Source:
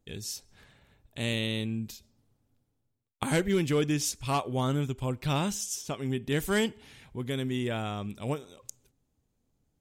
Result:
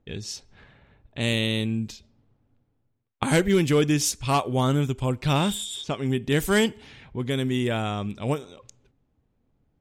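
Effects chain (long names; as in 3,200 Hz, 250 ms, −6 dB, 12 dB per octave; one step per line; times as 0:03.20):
healed spectral selection 0:05.40–0:05.81, 3,100–7,000 Hz before
low-pass that shuts in the quiet parts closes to 2,400 Hz, open at −26.5 dBFS
level +6 dB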